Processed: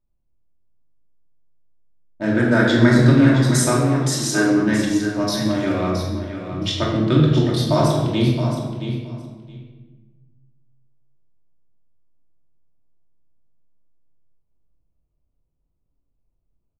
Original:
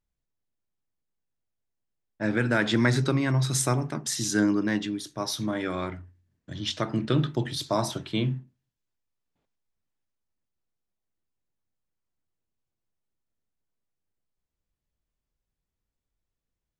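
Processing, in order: local Wiener filter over 25 samples; 2.34–2.99 s: peaking EQ 2.6 kHz -9.5 dB 0.47 oct; 3.62–4.57 s: high-pass 290 Hz 12 dB/octave; feedback delay 669 ms, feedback 15%, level -9.5 dB; simulated room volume 850 m³, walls mixed, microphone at 2.7 m; trim +2.5 dB

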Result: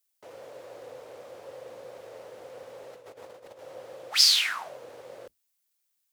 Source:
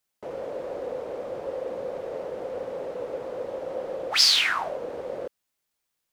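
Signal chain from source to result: octave divider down 2 oct, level -5 dB; tilt EQ +3.5 dB/octave; 2.93–3.59 s: compressor with a negative ratio -39 dBFS, ratio -0.5; trim -8.5 dB

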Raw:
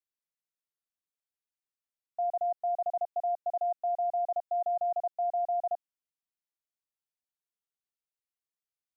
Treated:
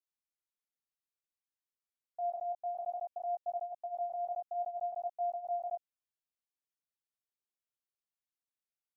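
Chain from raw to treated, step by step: chorus 0.58 Hz, delay 18.5 ms, depth 4.1 ms; trim -3.5 dB

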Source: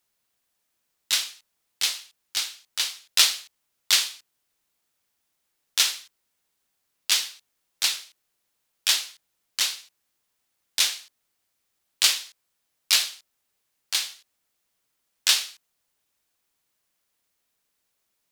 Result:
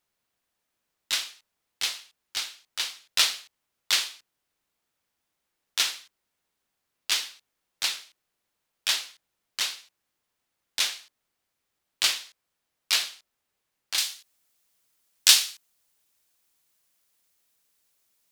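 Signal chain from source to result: treble shelf 3.8 kHz -7 dB, from 13.98 s +6 dB

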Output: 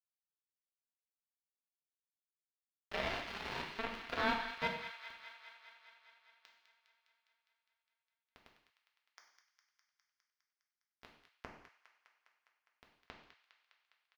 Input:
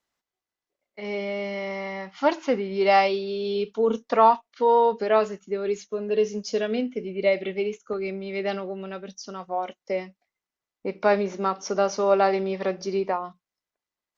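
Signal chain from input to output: high-pass 40 Hz; differentiator; comb 5.5 ms, depth 44%; upward compressor, threshold -46 dBFS; peak limiter -33 dBFS, peak gain reduction 11 dB; in parallel at +2.5 dB: compression 8:1, threshold -51 dBFS, peak gain reduction 14 dB; on the sum: painted sound rise, 2.90–4.68 s, 590–2100 Hz -37 dBFS; bit crusher 5-bit; distance through air 320 m; feedback echo behind a high-pass 204 ms, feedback 72%, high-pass 1.4 kHz, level -9.5 dB; gated-style reverb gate 250 ms falling, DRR 0 dB; trim +2 dB

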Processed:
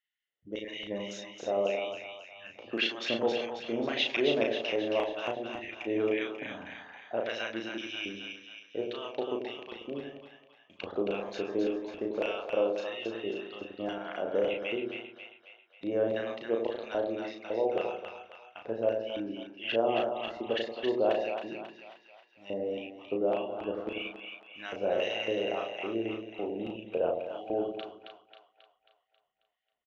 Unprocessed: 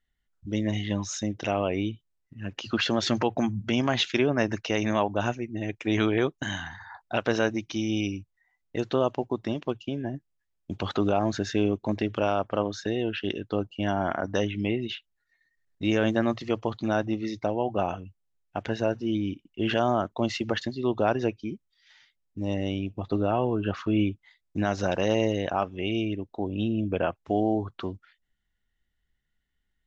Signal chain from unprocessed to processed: LFO band-pass square 1.8 Hz 500–2600 Hz; doubling 35 ms -4 dB; two-band feedback delay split 780 Hz, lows 90 ms, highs 270 ms, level -5 dB

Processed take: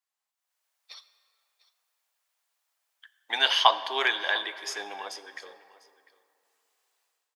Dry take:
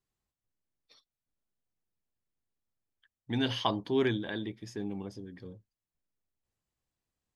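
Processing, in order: high-pass 710 Hz 24 dB/octave; level rider gain up to 16 dB; delay 699 ms -20.5 dB; on a send at -12 dB: reverberation RT60 2.7 s, pre-delay 7 ms

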